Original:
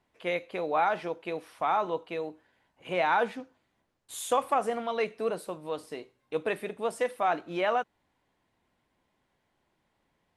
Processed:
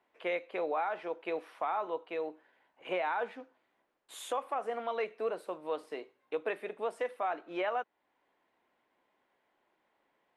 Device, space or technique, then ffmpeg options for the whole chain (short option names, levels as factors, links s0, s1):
DJ mixer with the lows and highs turned down: -filter_complex "[0:a]acrossover=split=280 3200:gain=0.0891 1 0.251[s0][s1][s2];[s0][s1][s2]amix=inputs=3:normalize=0,alimiter=level_in=1.19:limit=0.0631:level=0:latency=1:release=486,volume=0.841,volume=1.19"